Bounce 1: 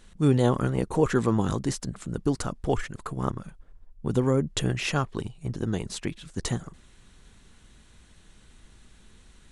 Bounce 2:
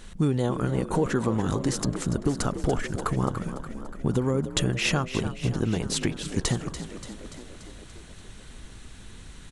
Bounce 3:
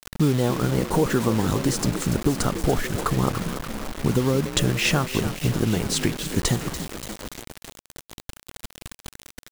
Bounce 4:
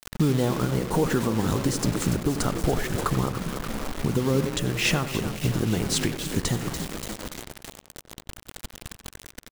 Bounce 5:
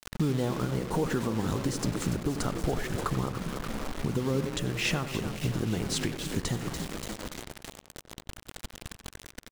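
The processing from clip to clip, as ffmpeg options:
ffmpeg -i in.wav -filter_complex "[0:a]acompressor=threshold=-30dB:ratio=6,asplit=8[link_01][link_02][link_03][link_04][link_05][link_06][link_07][link_08];[link_02]adelay=289,afreqshift=43,volume=-11.5dB[link_09];[link_03]adelay=578,afreqshift=86,volume=-15.7dB[link_10];[link_04]adelay=867,afreqshift=129,volume=-19.8dB[link_11];[link_05]adelay=1156,afreqshift=172,volume=-24dB[link_12];[link_06]adelay=1445,afreqshift=215,volume=-28.1dB[link_13];[link_07]adelay=1734,afreqshift=258,volume=-32.3dB[link_14];[link_08]adelay=2023,afreqshift=301,volume=-36.4dB[link_15];[link_01][link_09][link_10][link_11][link_12][link_13][link_14][link_15]amix=inputs=8:normalize=0,volume=8.5dB" out.wav
ffmpeg -i in.wav -af "acrusher=bits=5:mix=0:aa=0.000001,volume=3.5dB" out.wav
ffmpeg -i in.wav -filter_complex "[0:a]alimiter=limit=-12dB:level=0:latency=1:release=391,asplit=2[link_01][link_02];[link_02]adelay=91,lowpass=frequency=2000:poles=1,volume=-11dB,asplit=2[link_03][link_04];[link_04]adelay=91,lowpass=frequency=2000:poles=1,volume=0.38,asplit=2[link_05][link_06];[link_06]adelay=91,lowpass=frequency=2000:poles=1,volume=0.38,asplit=2[link_07][link_08];[link_08]adelay=91,lowpass=frequency=2000:poles=1,volume=0.38[link_09];[link_01][link_03][link_05][link_07][link_09]amix=inputs=5:normalize=0" out.wav
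ffmpeg -i in.wav -filter_complex "[0:a]highshelf=frequency=10000:gain=-6,asplit=2[link_01][link_02];[link_02]acompressor=threshold=-31dB:ratio=6,volume=0dB[link_03];[link_01][link_03]amix=inputs=2:normalize=0,volume=-7.5dB" out.wav

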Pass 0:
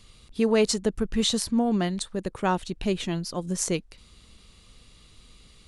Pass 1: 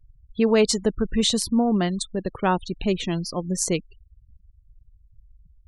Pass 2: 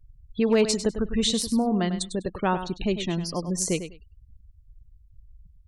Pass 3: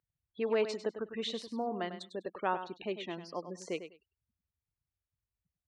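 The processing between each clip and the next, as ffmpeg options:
ffmpeg -i in.wav -af "afftfilt=real='re*gte(hypot(re,im),0.0126)':imag='im*gte(hypot(re,im),0.0126)':win_size=1024:overlap=0.75,volume=3dB" out.wav
ffmpeg -i in.wav -filter_complex "[0:a]asplit=2[link_01][link_02];[link_02]acompressor=threshold=-31dB:ratio=4,volume=0dB[link_03];[link_01][link_03]amix=inputs=2:normalize=0,aecho=1:1:100|200:0.299|0.0537,asoftclip=type=hard:threshold=-6.5dB,volume=-5dB" out.wav
ffmpeg -i in.wav -af "highpass=400,lowpass=2700,volume=-6dB" out.wav

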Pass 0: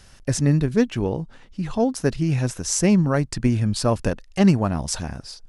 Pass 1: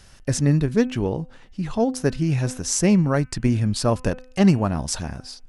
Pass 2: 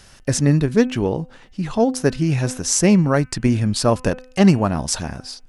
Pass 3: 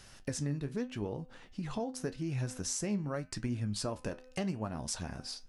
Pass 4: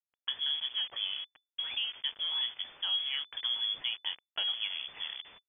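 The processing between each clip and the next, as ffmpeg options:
ffmpeg -i in.wav -af "bandreject=frequency=254.7:width_type=h:width=4,bandreject=frequency=509.4:width_type=h:width=4,bandreject=frequency=764.1:width_type=h:width=4,bandreject=frequency=1018.8:width_type=h:width=4,bandreject=frequency=1273.5:width_type=h:width=4,bandreject=frequency=1528.2:width_type=h:width=4,bandreject=frequency=1782.9:width_type=h:width=4,bandreject=frequency=2037.6:width_type=h:width=4,bandreject=frequency=2292.3:width_type=h:width=4,bandreject=frequency=2547:width_type=h:width=4,bandreject=frequency=2801.7:width_type=h:width=4,bandreject=frequency=3056.4:width_type=h:width=4" out.wav
ffmpeg -i in.wav -af "lowshelf=frequency=120:gain=-6,volume=4.5dB" out.wav
ffmpeg -i in.wav -af "acompressor=threshold=-27dB:ratio=4,flanger=delay=7.6:depth=7.4:regen=66:speed=0.84:shape=triangular,volume=-3.5dB" out.wav
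ffmpeg -i in.wav -af "aeval=exprs='val(0)*gte(abs(val(0)),0.00708)':channel_layout=same,lowpass=frequency=3000:width_type=q:width=0.5098,lowpass=frequency=3000:width_type=q:width=0.6013,lowpass=frequency=3000:width_type=q:width=0.9,lowpass=frequency=3000:width_type=q:width=2.563,afreqshift=-3500,volume=1.5dB" out.wav

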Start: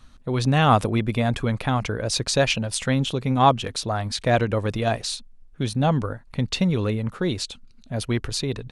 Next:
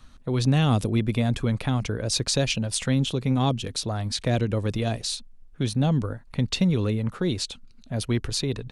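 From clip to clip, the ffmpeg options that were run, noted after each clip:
ffmpeg -i in.wav -filter_complex "[0:a]acrossover=split=430|3000[link_01][link_02][link_03];[link_02]acompressor=threshold=-37dB:ratio=2.5[link_04];[link_01][link_04][link_03]amix=inputs=3:normalize=0" out.wav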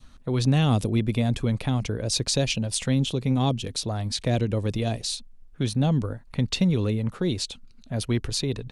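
ffmpeg -i in.wav -af "adynamicequalizer=threshold=0.00447:dfrequency=1400:dqfactor=1.5:tfrequency=1400:tqfactor=1.5:attack=5:release=100:ratio=0.375:range=2.5:mode=cutabove:tftype=bell" out.wav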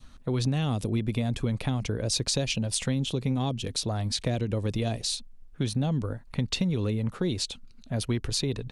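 ffmpeg -i in.wav -af "acompressor=threshold=-23dB:ratio=6" out.wav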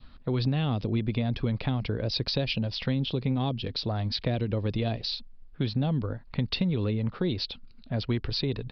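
ffmpeg -i in.wav -af "aresample=11025,aresample=44100" out.wav

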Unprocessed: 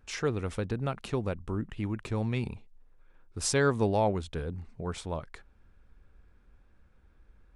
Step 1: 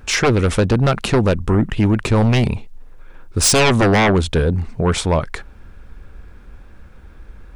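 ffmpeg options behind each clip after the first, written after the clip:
ffmpeg -i in.wav -af "aeval=exprs='0.188*sin(PI/2*3.55*val(0)/0.188)':channel_layout=same,volume=5dB" out.wav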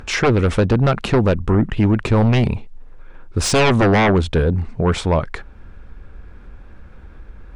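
ffmpeg -i in.wav -af "acompressor=mode=upward:threshold=-33dB:ratio=2.5,aemphasis=mode=reproduction:type=50kf" out.wav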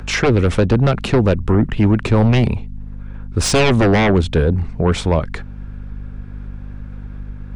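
ffmpeg -i in.wav -filter_complex "[0:a]aeval=exprs='val(0)+0.0282*(sin(2*PI*50*n/s)+sin(2*PI*2*50*n/s)/2+sin(2*PI*3*50*n/s)/3+sin(2*PI*4*50*n/s)/4+sin(2*PI*5*50*n/s)/5)':channel_layout=same,acrossover=split=280|720|1700[link_01][link_02][link_03][link_04];[link_03]alimiter=limit=-20.5dB:level=0:latency=1:release=476[link_05];[link_01][link_02][link_05][link_04]amix=inputs=4:normalize=0,volume=1.5dB" out.wav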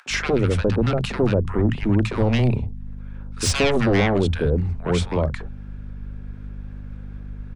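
ffmpeg -i in.wav -filter_complex "[0:a]acrossover=split=160|990[link_01][link_02][link_03];[link_02]adelay=60[link_04];[link_01]adelay=100[link_05];[link_05][link_04][link_03]amix=inputs=3:normalize=0,volume=-4dB" out.wav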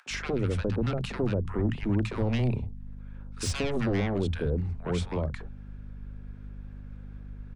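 ffmpeg -i in.wav -filter_complex "[0:a]acrossover=split=370[link_01][link_02];[link_02]acompressor=threshold=-24dB:ratio=6[link_03];[link_01][link_03]amix=inputs=2:normalize=0,volume=-7.5dB" out.wav

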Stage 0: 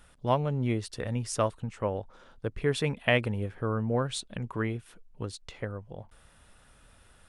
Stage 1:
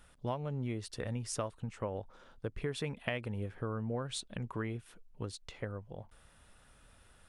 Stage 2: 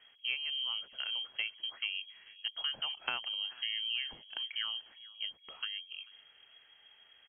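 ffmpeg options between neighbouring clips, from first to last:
ffmpeg -i in.wav -af "acompressor=threshold=-29dB:ratio=6,volume=-3.5dB" out.wav
ffmpeg -i in.wav -af "aecho=1:1:439|878:0.075|0.0247,lowpass=frequency=2800:width_type=q:width=0.5098,lowpass=frequency=2800:width_type=q:width=0.6013,lowpass=frequency=2800:width_type=q:width=0.9,lowpass=frequency=2800:width_type=q:width=2.563,afreqshift=-3300" out.wav

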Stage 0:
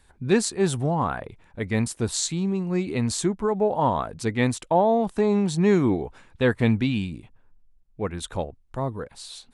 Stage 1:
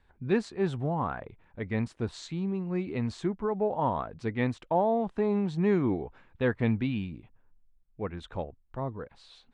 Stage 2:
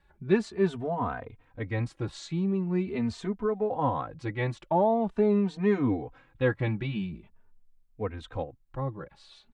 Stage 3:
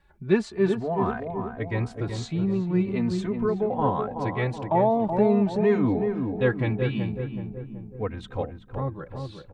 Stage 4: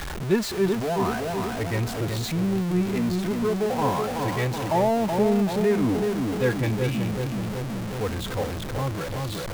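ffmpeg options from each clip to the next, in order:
ffmpeg -i in.wav -af "lowpass=2800,volume=-6dB" out.wav
ffmpeg -i in.wav -filter_complex "[0:a]asplit=2[link_01][link_02];[link_02]adelay=3.1,afreqshift=0.44[link_03];[link_01][link_03]amix=inputs=2:normalize=1,volume=4dB" out.wav
ffmpeg -i in.wav -filter_complex "[0:a]asplit=2[link_01][link_02];[link_02]adelay=376,lowpass=frequency=1100:poles=1,volume=-5dB,asplit=2[link_03][link_04];[link_04]adelay=376,lowpass=frequency=1100:poles=1,volume=0.54,asplit=2[link_05][link_06];[link_06]adelay=376,lowpass=frequency=1100:poles=1,volume=0.54,asplit=2[link_07][link_08];[link_08]adelay=376,lowpass=frequency=1100:poles=1,volume=0.54,asplit=2[link_09][link_10];[link_10]adelay=376,lowpass=frequency=1100:poles=1,volume=0.54,asplit=2[link_11][link_12];[link_12]adelay=376,lowpass=frequency=1100:poles=1,volume=0.54,asplit=2[link_13][link_14];[link_14]adelay=376,lowpass=frequency=1100:poles=1,volume=0.54[link_15];[link_01][link_03][link_05][link_07][link_09][link_11][link_13][link_15]amix=inputs=8:normalize=0,volume=2.5dB" out.wav
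ffmpeg -i in.wav -af "aeval=exprs='val(0)+0.5*0.0631*sgn(val(0))':channel_layout=same,volume=-2.5dB" out.wav

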